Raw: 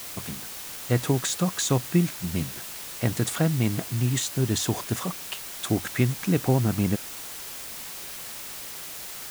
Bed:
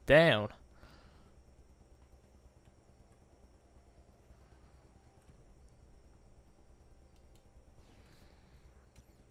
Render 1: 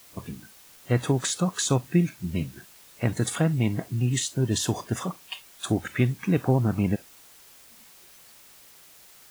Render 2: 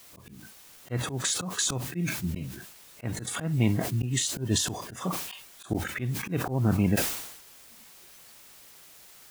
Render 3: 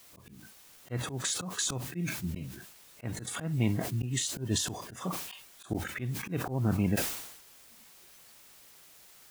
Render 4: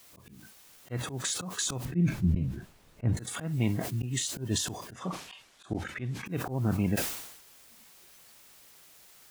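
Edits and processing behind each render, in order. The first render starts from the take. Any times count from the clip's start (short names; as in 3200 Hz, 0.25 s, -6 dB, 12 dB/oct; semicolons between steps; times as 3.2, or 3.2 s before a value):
noise print and reduce 14 dB
auto swell 0.155 s; sustainer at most 63 dB/s
gain -4 dB
1.85–3.17 tilt -3.5 dB/oct; 4.93–6.26 air absorption 65 m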